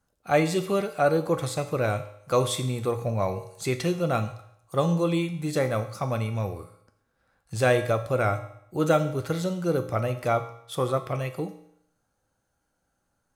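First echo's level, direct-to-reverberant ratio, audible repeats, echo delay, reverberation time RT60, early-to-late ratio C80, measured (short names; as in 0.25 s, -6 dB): none, 6.5 dB, none, none, 0.70 s, 14.0 dB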